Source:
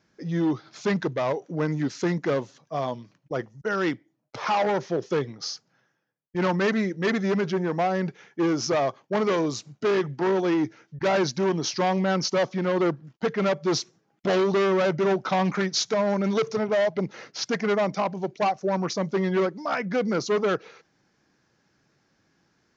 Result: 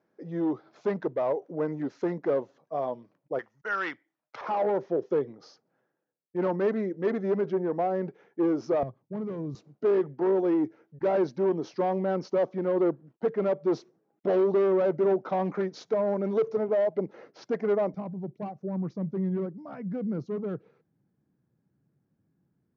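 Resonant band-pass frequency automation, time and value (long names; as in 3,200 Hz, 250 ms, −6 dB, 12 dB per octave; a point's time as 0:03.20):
resonant band-pass, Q 1.1
520 Hz
from 0:03.39 1,500 Hz
from 0:04.41 440 Hz
from 0:08.83 110 Hz
from 0:09.55 430 Hz
from 0:17.94 140 Hz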